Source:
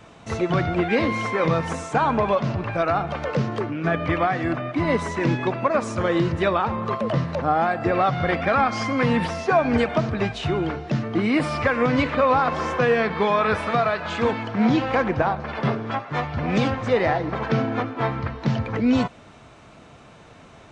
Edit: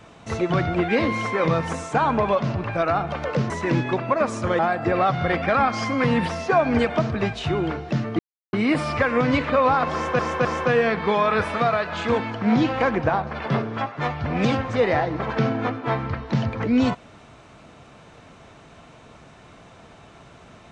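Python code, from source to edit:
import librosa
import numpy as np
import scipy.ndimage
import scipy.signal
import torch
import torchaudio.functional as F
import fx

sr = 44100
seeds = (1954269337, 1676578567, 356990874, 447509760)

y = fx.edit(x, sr, fx.cut(start_s=3.5, length_s=1.54),
    fx.cut(start_s=6.13, length_s=1.45),
    fx.insert_silence(at_s=11.18, length_s=0.34),
    fx.repeat(start_s=12.58, length_s=0.26, count=3), tone=tone)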